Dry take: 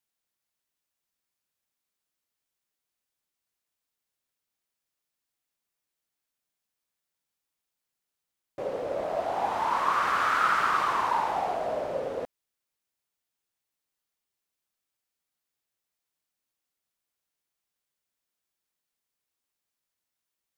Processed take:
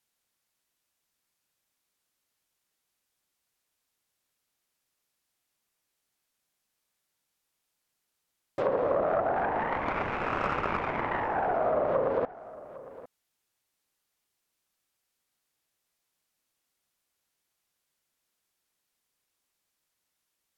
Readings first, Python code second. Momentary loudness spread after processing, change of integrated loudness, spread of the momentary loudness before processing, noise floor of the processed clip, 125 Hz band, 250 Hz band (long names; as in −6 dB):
18 LU, −2.0 dB, 12 LU, −82 dBFS, +8.0 dB, +6.0 dB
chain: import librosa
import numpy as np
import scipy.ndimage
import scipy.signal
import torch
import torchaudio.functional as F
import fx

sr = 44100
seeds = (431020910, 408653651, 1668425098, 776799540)

p1 = fx.self_delay(x, sr, depth_ms=0.76)
p2 = fx.dynamic_eq(p1, sr, hz=4300.0, q=1.4, threshold_db=-42.0, ratio=4.0, max_db=-7)
p3 = fx.env_lowpass_down(p2, sr, base_hz=880.0, full_db=-27.0)
p4 = p3 + fx.echo_single(p3, sr, ms=806, db=-18.0, dry=0)
y = p4 * 10.0 ** (6.0 / 20.0)